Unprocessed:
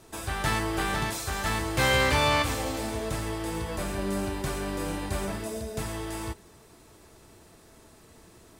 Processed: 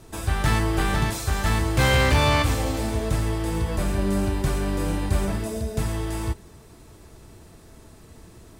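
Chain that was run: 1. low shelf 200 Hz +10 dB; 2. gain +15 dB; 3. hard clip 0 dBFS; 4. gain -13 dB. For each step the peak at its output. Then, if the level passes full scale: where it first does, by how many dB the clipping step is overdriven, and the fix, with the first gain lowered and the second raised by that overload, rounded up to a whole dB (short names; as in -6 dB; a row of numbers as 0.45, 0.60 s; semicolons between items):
-9.0, +6.0, 0.0, -13.0 dBFS; step 2, 6.0 dB; step 2 +9 dB, step 4 -7 dB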